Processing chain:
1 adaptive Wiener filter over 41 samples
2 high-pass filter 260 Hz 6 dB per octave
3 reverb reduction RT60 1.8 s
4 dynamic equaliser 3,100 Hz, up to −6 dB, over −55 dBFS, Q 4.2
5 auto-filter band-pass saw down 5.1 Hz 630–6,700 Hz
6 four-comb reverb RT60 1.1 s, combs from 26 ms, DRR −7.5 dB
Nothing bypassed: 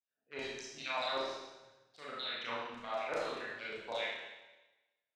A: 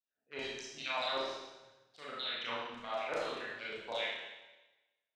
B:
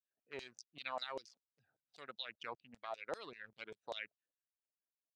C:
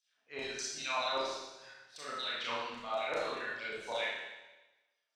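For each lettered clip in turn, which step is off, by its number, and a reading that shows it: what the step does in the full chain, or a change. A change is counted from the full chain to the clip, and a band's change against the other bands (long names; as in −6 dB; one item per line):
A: 4, 4 kHz band +2.0 dB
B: 6, change in momentary loudness spread −4 LU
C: 1, 8 kHz band +8.0 dB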